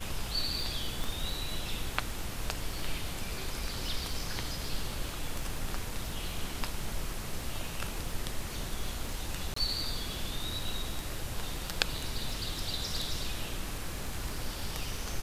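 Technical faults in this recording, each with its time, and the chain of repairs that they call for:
crackle 32 per s -38 dBFS
1.04 s: pop
9.54–9.56 s: dropout 24 ms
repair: de-click; interpolate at 9.54 s, 24 ms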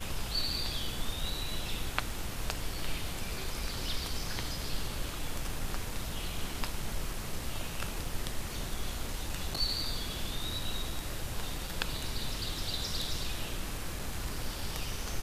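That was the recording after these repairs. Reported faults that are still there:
1.04 s: pop

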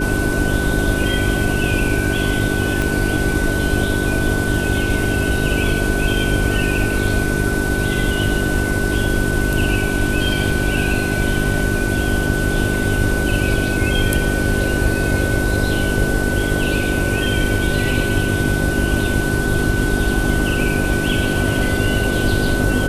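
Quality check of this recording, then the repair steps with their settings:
hum 50 Hz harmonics 8 -22 dBFS
whine 1.5 kHz -23 dBFS
2.82 s: pop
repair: de-click; band-stop 1.5 kHz, Q 30; de-hum 50 Hz, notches 8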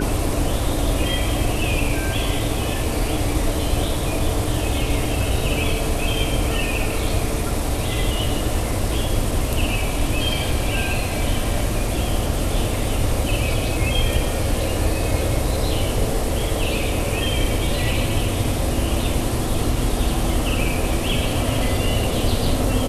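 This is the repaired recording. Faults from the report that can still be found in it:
2.82 s: pop

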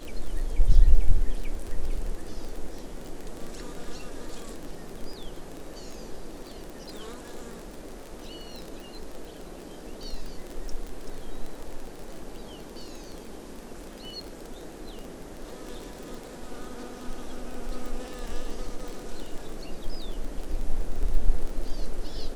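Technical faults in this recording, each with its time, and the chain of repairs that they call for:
crackle 22 per s -31 dBFS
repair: de-click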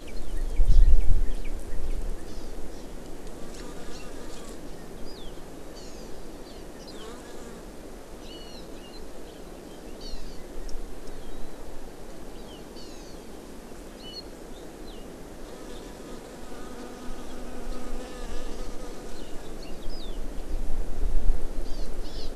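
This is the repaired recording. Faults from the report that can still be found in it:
nothing left

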